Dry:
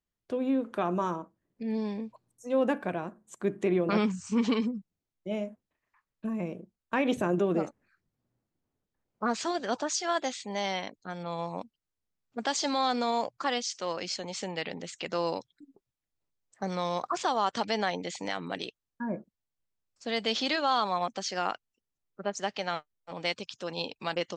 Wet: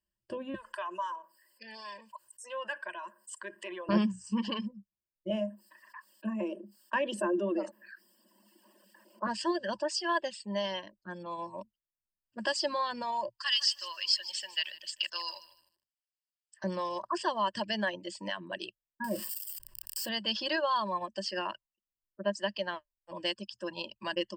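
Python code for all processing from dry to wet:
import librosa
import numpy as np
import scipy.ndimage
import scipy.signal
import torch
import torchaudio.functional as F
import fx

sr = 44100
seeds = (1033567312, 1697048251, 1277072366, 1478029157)

y = fx.chain(x, sr, fx.highpass(hz=1200.0, slope=12),
    fx.comb(ms=2.0, depth=0.3),
    fx.env_flatten(amount_pct=50), at=(0.54, 3.89))
y = fx.chain(y, sr, fx.cheby1_highpass(hz=200.0, order=6),
    fx.low_shelf(hz=410.0, db=-5.0),
    fx.env_flatten(amount_pct=50), at=(5.3, 9.27))
y = fx.chain(y, sr, fx.highpass(hz=1500.0, slope=12),
    fx.peak_eq(hz=4200.0, db=9.0, octaves=1.8),
    fx.echo_crushed(ms=153, feedback_pct=35, bits=9, wet_db=-8.5), at=(13.3, 16.64))
y = fx.chain(y, sr, fx.crossing_spikes(level_db=-30.5),
    fx.low_shelf(hz=170.0, db=-7.5),
    fx.env_flatten(amount_pct=70), at=(19.04, 20.09))
y = fx.notch(y, sr, hz=5600.0, q=25.0)
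y = fx.dereverb_blind(y, sr, rt60_s=1.6)
y = fx.ripple_eq(y, sr, per_octave=1.3, db=17)
y = F.gain(torch.from_numpy(y), -4.5).numpy()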